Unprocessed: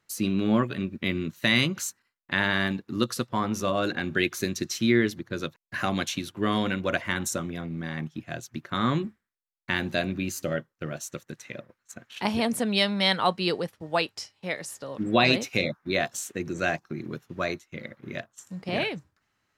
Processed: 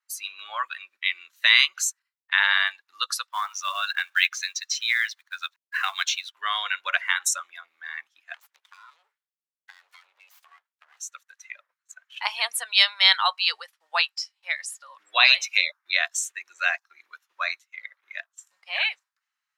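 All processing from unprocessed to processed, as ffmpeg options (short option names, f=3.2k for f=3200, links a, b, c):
-filter_complex "[0:a]asettb=1/sr,asplit=3[a][b][c];[a]atrim=end=3.284[d];[b]atrim=start=3.28:end=6.34,asetpts=PTS-STARTPTS,afade=t=in:d=0.004:c=qsin,afade=t=out:st=3.056:d=0.004:c=qsin,highpass=790,lowpass=8k,acrusher=bits=3:mode=log:mix=0:aa=0.000001[e];[c]atrim=start=6.336[f];[d][e]acrossfade=d=0.004:c1=hsin:c2=qsin[g];[g][f]acrossfade=d=0.004:c1=qsin:c2=hsin,asettb=1/sr,asplit=3[h][i][j];[h]atrim=end=8.344[k];[i]atrim=start=8.34:end=11,asetpts=PTS-STARTPTS,afade=t=in:d=0.004:c=qsin,afade=t=out:st=2.656:d=0.004:c=qsin,aeval=exprs='abs(val(0))':c=same,acompressor=threshold=-36dB:ratio=10:attack=3.2:release=140:knee=1:detection=peak[l];[j]atrim=start=10.996[m];[k][l]acrossfade=d=0.004:c1=hsin:c2=qsin[n];[n][m]acrossfade=d=0.004:c1=qsin:c2=hsin,highpass=f=960:w=0.5412,highpass=f=960:w=1.3066,afftdn=nr=14:nf=-38,adynamicequalizer=threshold=0.0112:dfrequency=1900:dqfactor=0.7:tfrequency=1900:tqfactor=0.7:attack=5:release=100:ratio=0.375:range=2:mode=boostabove:tftype=highshelf,volume=4.5dB"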